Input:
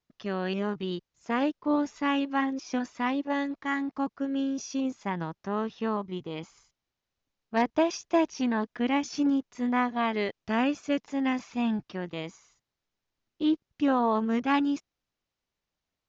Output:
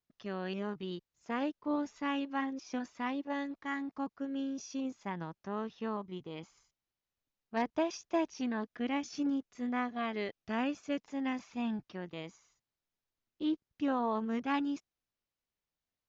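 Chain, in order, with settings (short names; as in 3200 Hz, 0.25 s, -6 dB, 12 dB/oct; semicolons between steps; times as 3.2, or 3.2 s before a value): 8.38–10.53 notch 940 Hz, Q 7.8; gain -7.5 dB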